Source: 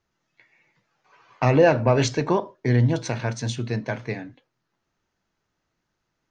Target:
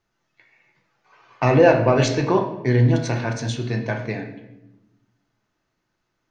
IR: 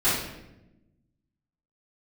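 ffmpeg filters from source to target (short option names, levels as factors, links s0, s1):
-filter_complex "[0:a]asplit=2[s0][s1];[1:a]atrim=start_sample=2205,lowpass=6100,lowshelf=f=170:g=-7.5[s2];[s1][s2]afir=irnorm=-1:irlink=0,volume=0.141[s3];[s0][s3]amix=inputs=2:normalize=0"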